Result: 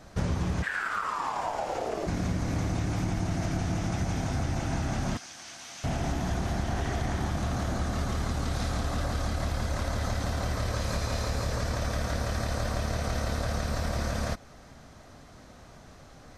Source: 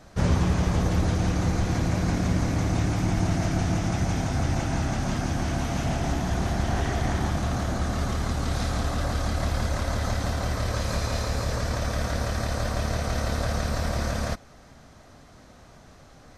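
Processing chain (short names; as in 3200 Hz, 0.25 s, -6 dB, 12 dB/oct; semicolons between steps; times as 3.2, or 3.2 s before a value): compressor 4:1, threshold -26 dBFS, peak gain reduction 8.5 dB; 0.62–2.06 ring modulator 1800 Hz -> 480 Hz; 5.17–5.84 band-pass 5500 Hz, Q 0.73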